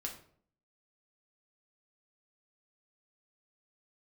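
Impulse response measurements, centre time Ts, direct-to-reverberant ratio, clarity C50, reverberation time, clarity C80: 19 ms, 0.0 dB, 8.5 dB, 0.55 s, 12.5 dB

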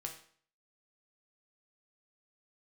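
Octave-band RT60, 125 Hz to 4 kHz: 0.50, 0.55, 0.50, 0.50, 0.50, 0.50 s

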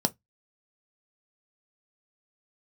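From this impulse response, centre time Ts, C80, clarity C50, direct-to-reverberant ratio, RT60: 3 ms, 43.0 dB, 27.5 dB, 8.0 dB, not exponential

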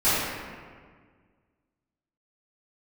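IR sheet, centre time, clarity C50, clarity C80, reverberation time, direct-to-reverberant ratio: 0.125 s, -3.5 dB, -1.0 dB, 1.7 s, -16.0 dB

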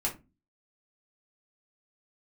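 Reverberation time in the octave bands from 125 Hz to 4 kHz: 0.50, 0.45, 0.30, 0.25, 0.20, 0.15 s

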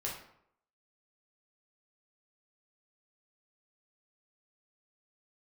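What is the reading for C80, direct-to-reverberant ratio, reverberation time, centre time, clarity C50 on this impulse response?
8.5 dB, -4.0 dB, 0.70 s, 36 ms, 4.5 dB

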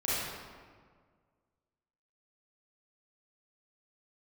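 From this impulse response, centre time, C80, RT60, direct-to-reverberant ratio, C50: 0.127 s, -1.0 dB, 1.7 s, -10.0 dB, -5.0 dB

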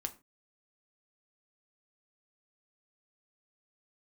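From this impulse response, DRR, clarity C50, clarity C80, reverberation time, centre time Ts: 6.0 dB, 17.0 dB, 22.5 dB, not exponential, 6 ms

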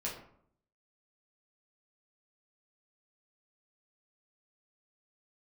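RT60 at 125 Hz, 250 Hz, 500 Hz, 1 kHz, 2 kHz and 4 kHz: 0.80, 0.75, 0.65, 0.65, 0.50, 0.35 s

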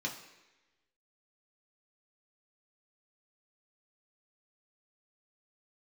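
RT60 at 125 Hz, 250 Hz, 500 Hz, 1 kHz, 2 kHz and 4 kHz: 0.80, 1.0, 1.1, 1.0, 1.2, 1.1 s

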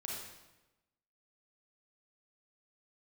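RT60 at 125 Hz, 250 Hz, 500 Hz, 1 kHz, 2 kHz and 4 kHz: 1.1, 1.1, 1.1, 1.0, 0.95, 0.85 s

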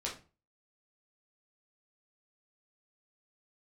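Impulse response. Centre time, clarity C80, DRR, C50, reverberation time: 25 ms, 15.5 dB, -4.0 dB, 9.0 dB, 0.35 s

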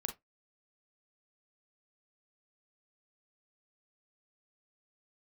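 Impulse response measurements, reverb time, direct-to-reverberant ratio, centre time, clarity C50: not exponential, 4.5 dB, 12 ms, 12.0 dB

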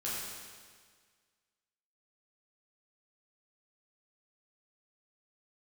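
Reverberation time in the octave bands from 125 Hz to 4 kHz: 1.7, 1.7, 1.7, 1.7, 1.7, 1.7 s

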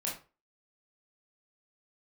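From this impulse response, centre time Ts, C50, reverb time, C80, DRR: 31 ms, 6.5 dB, 0.35 s, 12.5 dB, -4.0 dB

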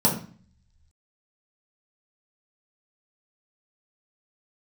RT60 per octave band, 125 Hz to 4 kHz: 1.1, 0.70, 0.40, 0.45, 0.45, 0.40 s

